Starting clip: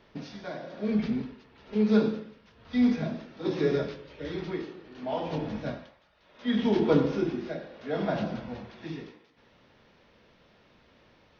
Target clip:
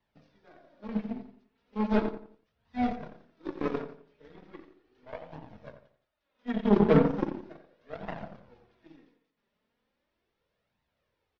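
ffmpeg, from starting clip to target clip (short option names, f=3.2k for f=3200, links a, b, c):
-filter_complex "[0:a]asplit=3[a][b][c];[a]afade=t=out:st=6.67:d=0.02[d];[b]equalizer=f=160:t=o:w=0.87:g=7,afade=t=in:st=6.67:d=0.02,afade=t=out:st=7.56:d=0.02[e];[c]afade=t=in:st=7.56:d=0.02[f];[d][e][f]amix=inputs=3:normalize=0,acrossover=split=200|2600[g][h][i];[i]acompressor=threshold=-59dB:ratio=6[j];[g][h][j]amix=inputs=3:normalize=0,aeval=exprs='0.398*(cos(1*acos(clip(val(0)/0.398,-1,1)))-cos(1*PI/2))+0.0282*(cos(5*acos(clip(val(0)/0.398,-1,1)))-cos(5*PI/2))+0.0708*(cos(7*acos(clip(val(0)/0.398,-1,1)))-cos(7*PI/2))+0.00631*(cos(8*acos(clip(val(0)/0.398,-1,1)))-cos(8*PI/2))':c=same,flanger=delay=1:depth=4.1:regen=20:speed=0.37:shape=triangular,asplit=2[k][l];[l]adelay=87,lowpass=f=2.3k:p=1,volume=-9.5dB,asplit=2[m][n];[n]adelay=87,lowpass=f=2.3k:p=1,volume=0.34,asplit=2[o][p];[p]adelay=87,lowpass=f=2.3k:p=1,volume=0.34,asplit=2[q][r];[r]adelay=87,lowpass=f=2.3k:p=1,volume=0.34[s];[m][o][q][s]amix=inputs=4:normalize=0[t];[k][t]amix=inputs=2:normalize=0,volume=2.5dB" -ar 32000 -c:a aac -b:a 64k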